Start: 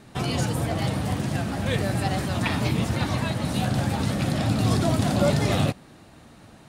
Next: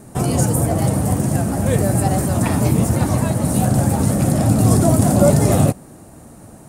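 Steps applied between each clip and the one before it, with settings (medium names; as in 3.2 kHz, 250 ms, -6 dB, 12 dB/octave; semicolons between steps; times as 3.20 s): FFT filter 630 Hz 0 dB, 3.7 kHz -15 dB, 8.5 kHz +7 dB; trim +8.5 dB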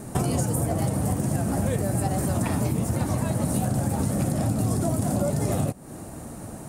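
compression 12:1, threshold -24 dBFS, peak gain reduction 16.5 dB; trim +3 dB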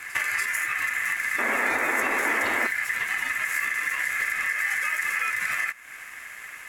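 ring modulator 1.9 kHz; pre-echo 289 ms -14 dB; painted sound noise, 1.38–2.67 s, 210–2300 Hz -28 dBFS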